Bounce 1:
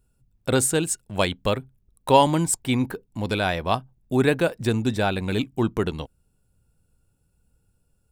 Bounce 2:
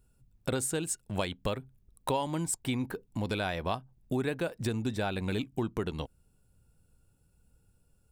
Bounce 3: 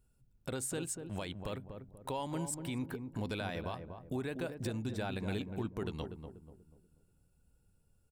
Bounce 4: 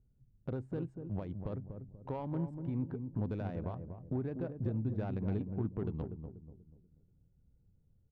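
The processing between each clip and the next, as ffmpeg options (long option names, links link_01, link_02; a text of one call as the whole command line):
ffmpeg -i in.wav -af "acompressor=threshold=-30dB:ratio=4" out.wav
ffmpeg -i in.wav -filter_complex "[0:a]alimiter=limit=-23dB:level=0:latency=1:release=72,asplit=2[link_01][link_02];[link_02]adelay=242,lowpass=frequency=800:poles=1,volume=-6dB,asplit=2[link_03][link_04];[link_04]adelay=242,lowpass=frequency=800:poles=1,volume=0.42,asplit=2[link_05][link_06];[link_06]adelay=242,lowpass=frequency=800:poles=1,volume=0.42,asplit=2[link_07][link_08];[link_08]adelay=242,lowpass=frequency=800:poles=1,volume=0.42,asplit=2[link_09][link_10];[link_10]adelay=242,lowpass=frequency=800:poles=1,volume=0.42[link_11];[link_01][link_03][link_05][link_07][link_09][link_11]amix=inputs=6:normalize=0,volume=-5dB" out.wav
ffmpeg -i in.wav -af "adynamicsmooth=sensitivity=1:basefreq=600,equalizer=frequency=120:width_type=o:width=1.6:gain=5.5" out.wav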